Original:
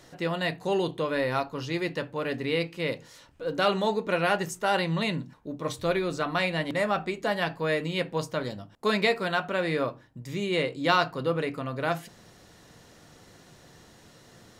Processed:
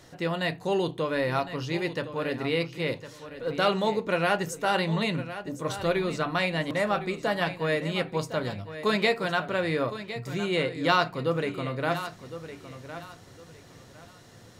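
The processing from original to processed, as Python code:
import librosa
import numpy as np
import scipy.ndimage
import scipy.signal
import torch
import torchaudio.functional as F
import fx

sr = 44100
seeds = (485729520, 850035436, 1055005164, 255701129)

p1 = fx.peak_eq(x, sr, hz=100.0, db=7.0, octaves=0.56)
y = p1 + fx.echo_feedback(p1, sr, ms=1059, feedback_pct=26, wet_db=-12.5, dry=0)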